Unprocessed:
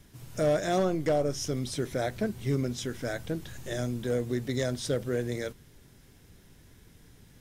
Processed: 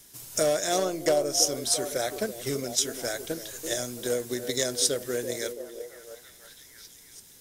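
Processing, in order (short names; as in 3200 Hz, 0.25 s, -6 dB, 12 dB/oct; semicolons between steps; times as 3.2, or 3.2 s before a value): tone controls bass -12 dB, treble +14 dB; delay with a stepping band-pass 0.333 s, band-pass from 370 Hz, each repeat 0.7 oct, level -5.5 dB; transient shaper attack +6 dB, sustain 0 dB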